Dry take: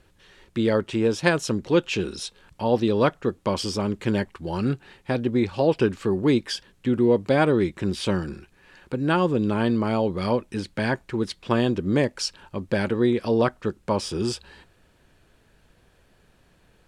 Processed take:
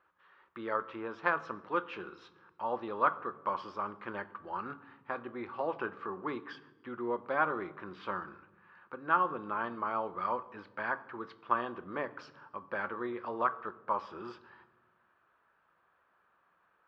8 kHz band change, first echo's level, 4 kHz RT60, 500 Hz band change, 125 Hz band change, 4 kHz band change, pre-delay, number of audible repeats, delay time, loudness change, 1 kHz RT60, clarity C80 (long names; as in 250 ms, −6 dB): below −35 dB, no echo audible, 0.80 s, −15.0 dB, −26.5 dB, −22.5 dB, 3 ms, no echo audible, no echo audible, −11.5 dB, 0.95 s, 19.0 dB